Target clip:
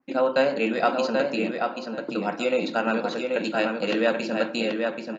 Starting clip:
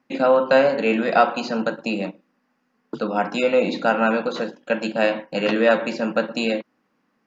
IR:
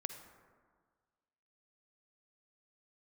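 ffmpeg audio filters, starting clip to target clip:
-filter_complex "[0:a]equalizer=frequency=340:width_type=o:width=0.56:gain=5,atempo=1.4,asplit=2[link_01][link_02];[link_02]adelay=783,lowpass=frequency=4700:poles=1,volume=-4dB,asplit=2[link_03][link_04];[link_04]adelay=783,lowpass=frequency=4700:poles=1,volume=0.2,asplit=2[link_05][link_06];[link_06]adelay=783,lowpass=frequency=4700:poles=1,volume=0.2[link_07];[link_01][link_03][link_05][link_07]amix=inputs=4:normalize=0,asplit=2[link_08][link_09];[1:a]atrim=start_sample=2205,highshelf=frequency=6000:gain=9.5[link_10];[link_09][link_10]afir=irnorm=-1:irlink=0,volume=-10.5dB[link_11];[link_08][link_11]amix=inputs=2:normalize=0,adynamicequalizer=threshold=0.0251:dfrequency=2300:dqfactor=0.7:tfrequency=2300:tqfactor=0.7:attack=5:release=100:ratio=0.375:range=2.5:mode=boostabove:tftype=highshelf,volume=-8dB"

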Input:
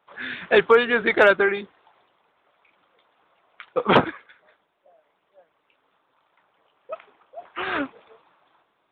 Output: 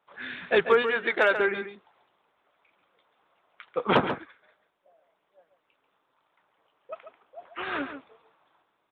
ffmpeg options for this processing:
ffmpeg -i in.wav -filter_complex "[0:a]asettb=1/sr,asplit=3[link_01][link_02][link_03];[link_01]atrim=end=0.824[link_04];[link_02]atrim=start=0.82:end=1.36,asetpts=PTS-STARTPTS,afade=type=in:duration=0.004:curve=qsin,afade=type=out:start_time=0.536:duration=0.004:curve=qsin,highpass=frequency=460:poles=1[link_05];[link_03]atrim=start=1.356[link_06];[link_04][link_05]acrossfade=duration=0.004:curve1=hsin:curve2=qsin[link_07];[link_07][link_06]acrossfade=duration=0.004:curve1=qsin:curve2=hsin,asplit=2[link_08][link_09];[link_09]adelay=139.9,volume=-9dB,highshelf=frequency=4000:gain=-3.15[link_10];[link_08][link_10]amix=inputs=2:normalize=0,volume=-5.5dB" out.wav

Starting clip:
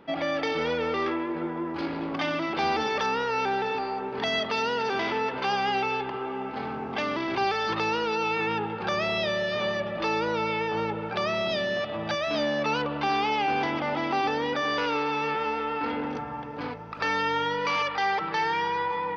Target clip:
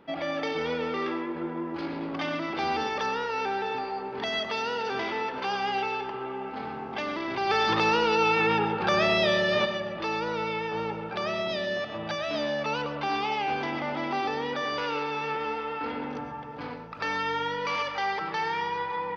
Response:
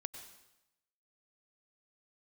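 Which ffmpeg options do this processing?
-filter_complex "[0:a]asplit=3[link_01][link_02][link_03];[link_01]afade=type=out:start_time=7.49:duration=0.02[link_04];[link_02]acontrast=72,afade=type=in:start_time=7.49:duration=0.02,afade=type=out:start_time=9.64:duration=0.02[link_05];[link_03]afade=type=in:start_time=9.64:duration=0.02[link_06];[link_04][link_05][link_06]amix=inputs=3:normalize=0[link_07];[1:a]atrim=start_sample=2205,afade=type=out:start_time=0.19:duration=0.01,atrim=end_sample=8820[link_08];[link_07][link_08]afir=irnorm=-1:irlink=0"

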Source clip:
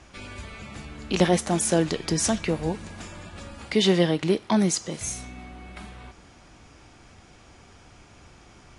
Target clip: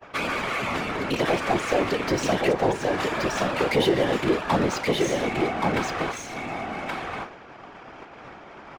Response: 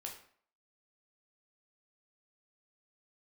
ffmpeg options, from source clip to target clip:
-filter_complex "[0:a]agate=range=-33dB:threshold=-43dB:ratio=3:detection=peak,equalizer=frequency=71:width=0.53:gain=-4.5,acompressor=threshold=-38dB:ratio=3,asplit=2[link_01][link_02];[link_02]highpass=frequency=720:poles=1,volume=36dB,asoftclip=type=tanh:threshold=-2dB[link_03];[link_01][link_03]amix=inputs=2:normalize=0,lowpass=frequency=1300:poles=1,volume=-6dB,adynamicsmooth=sensitivity=3.5:basefreq=2700,afftfilt=real='hypot(re,im)*cos(2*PI*random(0))':imag='hypot(re,im)*sin(2*PI*random(1))':win_size=512:overlap=0.75,aecho=1:1:1125:0.708"

